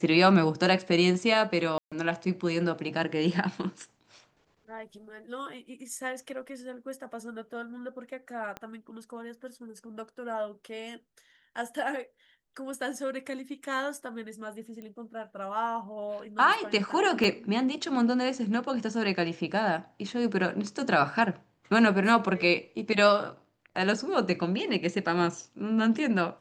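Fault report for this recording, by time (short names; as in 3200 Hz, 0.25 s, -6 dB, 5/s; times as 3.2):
1.78–1.92 gap 0.136 s
8.57 pop -23 dBFS
14.82 pop -31 dBFS
17.24 gap 3.1 ms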